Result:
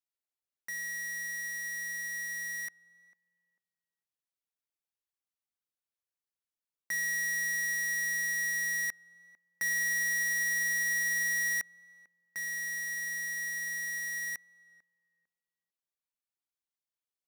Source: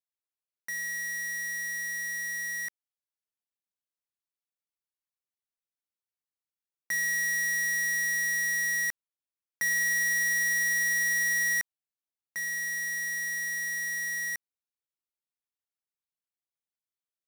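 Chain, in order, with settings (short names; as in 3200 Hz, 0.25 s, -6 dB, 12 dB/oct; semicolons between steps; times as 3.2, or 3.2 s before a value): tape echo 0.448 s, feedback 25%, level -17 dB, low-pass 1000 Hz; gain -3.5 dB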